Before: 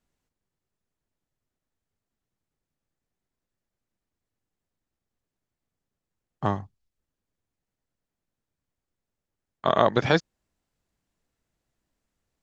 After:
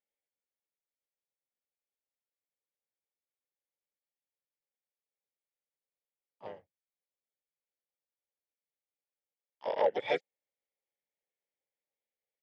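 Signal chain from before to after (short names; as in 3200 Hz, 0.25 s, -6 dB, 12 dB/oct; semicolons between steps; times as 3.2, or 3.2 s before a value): double band-pass 1100 Hz, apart 2 oct; harmoniser -3 st -5 dB, +7 st -5 dB; upward expander 1.5:1, over -34 dBFS; gain -1 dB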